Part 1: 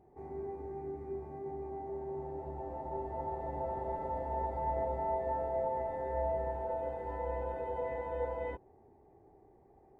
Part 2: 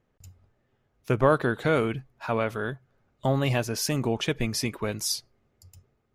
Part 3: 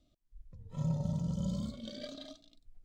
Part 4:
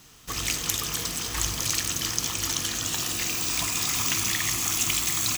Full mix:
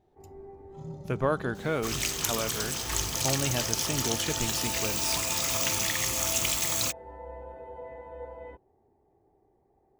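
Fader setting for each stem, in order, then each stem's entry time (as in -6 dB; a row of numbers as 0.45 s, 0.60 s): -5.5 dB, -6.0 dB, -8.5 dB, -2.5 dB; 0.00 s, 0.00 s, 0.00 s, 1.55 s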